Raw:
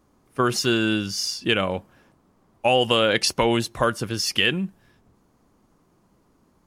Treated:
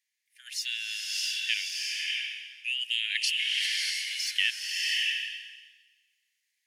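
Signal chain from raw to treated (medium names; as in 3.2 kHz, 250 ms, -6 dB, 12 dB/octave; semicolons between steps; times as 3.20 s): steep high-pass 1.8 kHz 96 dB/octave; treble shelf 2.4 kHz -9 dB; swelling reverb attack 650 ms, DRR -2 dB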